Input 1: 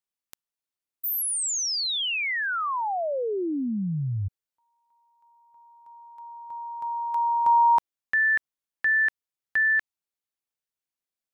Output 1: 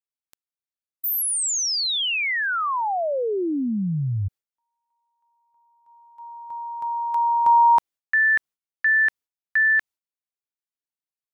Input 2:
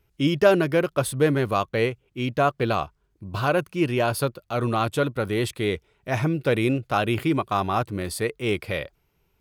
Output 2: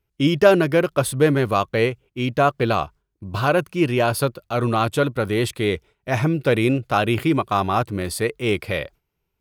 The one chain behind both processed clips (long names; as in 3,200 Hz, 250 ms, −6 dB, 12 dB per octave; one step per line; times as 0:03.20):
downward expander −42 dBFS, range −12 dB
level +3.5 dB